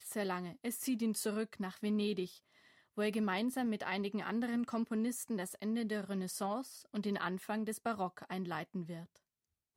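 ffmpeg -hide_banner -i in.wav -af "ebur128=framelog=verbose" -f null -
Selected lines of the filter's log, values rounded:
Integrated loudness:
  I:         -38.0 LUFS
  Threshold: -48.3 LUFS
Loudness range:
  LRA:         2.8 LU
  Threshold: -58.1 LUFS
  LRA low:   -39.8 LUFS
  LRA high:  -37.0 LUFS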